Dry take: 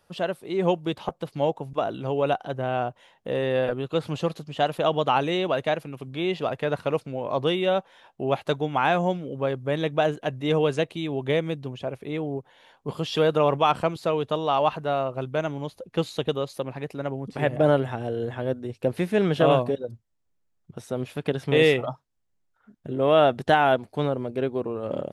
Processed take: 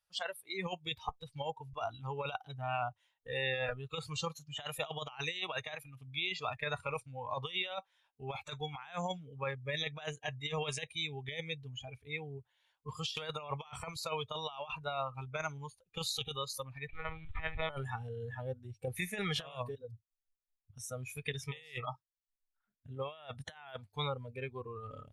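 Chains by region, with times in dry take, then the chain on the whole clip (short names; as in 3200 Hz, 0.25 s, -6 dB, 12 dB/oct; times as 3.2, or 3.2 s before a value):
16.87–17.7 block floating point 3-bit + compressor 5:1, threshold -21 dBFS + monotone LPC vocoder at 8 kHz 160 Hz
whole clip: spectral noise reduction 21 dB; passive tone stack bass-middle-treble 10-0-10; negative-ratio compressor -39 dBFS, ratio -0.5; gain +2 dB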